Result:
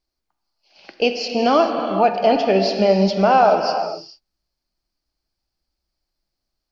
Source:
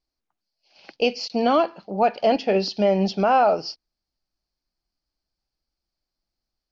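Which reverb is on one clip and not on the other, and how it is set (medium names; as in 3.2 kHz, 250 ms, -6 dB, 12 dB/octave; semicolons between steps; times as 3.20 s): gated-style reverb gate 460 ms flat, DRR 4.5 dB; trim +3 dB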